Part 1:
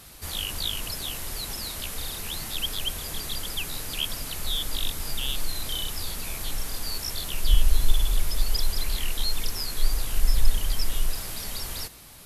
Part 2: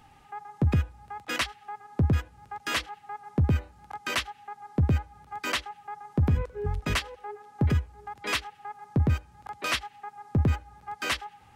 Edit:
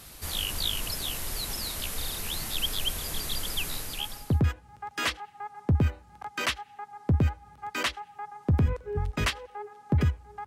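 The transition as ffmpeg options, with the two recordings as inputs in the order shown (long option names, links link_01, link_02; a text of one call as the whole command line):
ffmpeg -i cue0.wav -i cue1.wav -filter_complex "[0:a]apad=whole_dur=10.46,atrim=end=10.46,atrim=end=4.43,asetpts=PTS-STARTPTS[link_01];[1:a]atrim=start=1.36:end=8.15,asetpts=PTS-STARTPTS[link_02];[link_01][link_02]acrossfade=duration=0.76:curve1=tri:curve2=tri" out.wav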